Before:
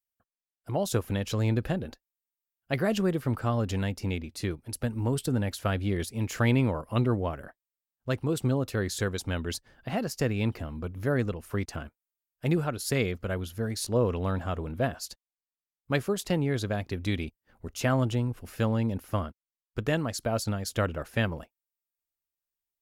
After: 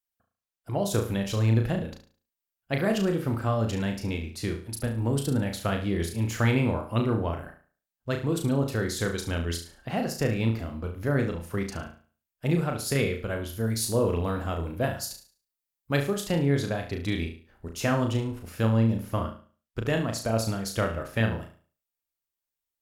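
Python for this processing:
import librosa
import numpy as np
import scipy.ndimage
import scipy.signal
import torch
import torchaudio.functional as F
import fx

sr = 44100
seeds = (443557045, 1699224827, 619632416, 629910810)

y = fx.high_shelf(x, sr, hz=9100.0, db=9.0, at=(13.49, 15.98))
y = fx.room_flutter(y, sr, wall_m=6.1, rt60_s=0.41)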